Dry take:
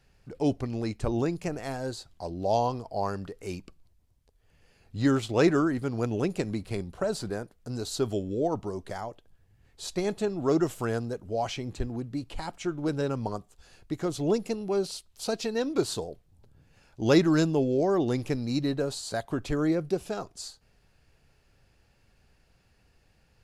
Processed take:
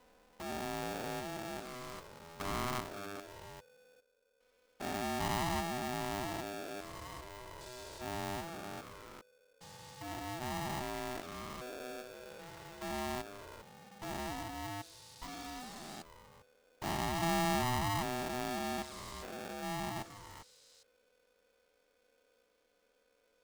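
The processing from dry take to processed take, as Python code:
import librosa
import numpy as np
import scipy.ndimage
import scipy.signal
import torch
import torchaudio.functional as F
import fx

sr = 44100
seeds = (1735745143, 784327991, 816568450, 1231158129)

y = fx.spec_steps(x, sr, hold_ms=400)
y = fx.env_flanger(y, sr, rest_ms=4.2, full_db=-25.0)
y = y * np.sign(np.sin(2.0 * np.pi * 500.0 * np.arange(len(y)) / sr))
y = y * librosa.db_to_amplitude(-6.0)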